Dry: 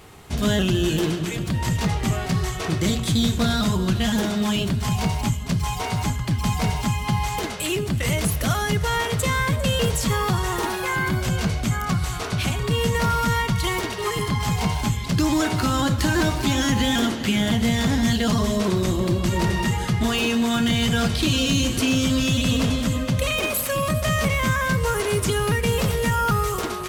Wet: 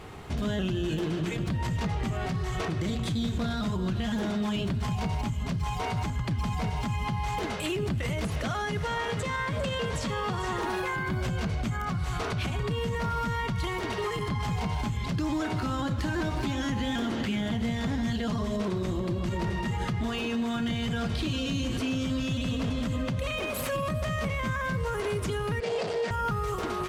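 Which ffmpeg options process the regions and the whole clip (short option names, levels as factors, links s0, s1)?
-filter_complex "[0:a]asettb=1/sr,asplit=3[s0][s1][s2];[s0]atrim=end=8.264[s3];[s1]atrim=start=8.26:end=10.61,asetpts=PTS-STARTPTS,afade=t=in:d=0.004:c=qsin,afade=t=out:st=2.346:d=0.004:c=qsin,acrossover=split=9300[s4][s5];[s5]acompressor=threshold=0.00355:ratio=4:attack=1:release=60[s6];[s4][s6]amix=inputs=2:normalize=0,lowshelf=f=160:g=-8,aecho=1:1:444:0.335,atrim=end_sample=103635[s7];[s2]atrim=start=10.606[s8];[s3][s7]acrossfade=d=0.004:c1=hsin:c2=qsin[s9];[s9][s8]acrossfade=d=0.004:c1=qsin:c2=hsin,asettb=1/sr,asplit=3[s10][s11][s12];[s10]atrim=end=25.604[s13];[s11]atrim=start=25.6:end=26.11,asetpts=PTS-STARTPTS,afade=t=in:d=0.004:c=qsin,afade=t=out:st=0.506:d=0.004:c=qsin,asoftclip=type=hard:threshold=0.0631,highpass=260,equalizer=f=260:t=q:w=4:g=-9,equalizer=f=440:t=q:w=4:g=7,equalizer=f=670:t=q:w=4:g=6,equalizer=f=1100:t=q:w=4:g=-4,equalizer=f=4700:t=q:w=4:g=8,lowpass=f=8300:w=0.5412,lowpass=f=8300:w=1.3066[s14];[s12]atrim=start=26.106[s15];[s13][s14]acrossfade=d=0.004:c1=hsin:c2=qsin[s16];[s16][s15]acrossfade=d=0.004:c1=qsin:c2=hsin,lowpass=f=2600:p=1,acompressor=threshold=0.0708:ratio=6,alimiter=level_in=1.12:limit=0.0631:level=0:latency=1:release=137,volume=0.891,volume=1.41"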